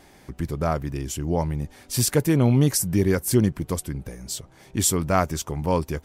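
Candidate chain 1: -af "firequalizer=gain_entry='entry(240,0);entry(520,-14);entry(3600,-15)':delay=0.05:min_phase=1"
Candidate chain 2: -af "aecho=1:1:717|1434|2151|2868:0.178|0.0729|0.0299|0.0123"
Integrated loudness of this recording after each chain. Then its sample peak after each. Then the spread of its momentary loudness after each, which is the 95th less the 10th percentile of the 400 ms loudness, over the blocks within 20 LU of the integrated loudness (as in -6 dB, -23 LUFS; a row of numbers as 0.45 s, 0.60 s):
-26.5 LUFS, -23.5 LUFS; -9.5 dBFS, -6.0 dBFS; 13 LU, 12 LU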